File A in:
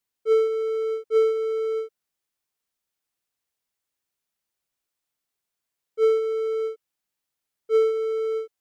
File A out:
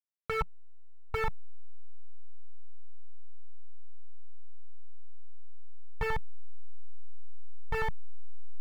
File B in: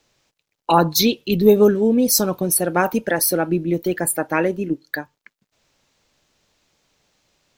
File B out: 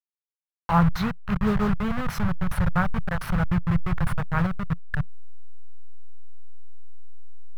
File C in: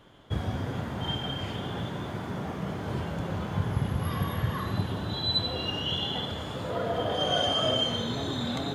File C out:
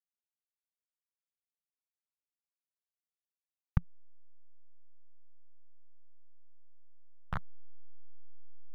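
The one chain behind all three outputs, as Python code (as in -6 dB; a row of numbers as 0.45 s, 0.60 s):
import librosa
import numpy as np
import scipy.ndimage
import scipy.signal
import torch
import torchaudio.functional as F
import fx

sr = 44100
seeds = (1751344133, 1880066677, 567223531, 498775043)

y = fx.delta_hold(x, sr, step_db=-15.0)
y = fx.curve_eq(y, sr, hz=(170.0, 300.0, 1300.0, 6700.0), db=(0, -26, -4, -30))
y = y * 10.0 ** (3.5 / 20.0)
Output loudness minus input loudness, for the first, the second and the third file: -11.5 LU, -7.5 LU, -9.0 LU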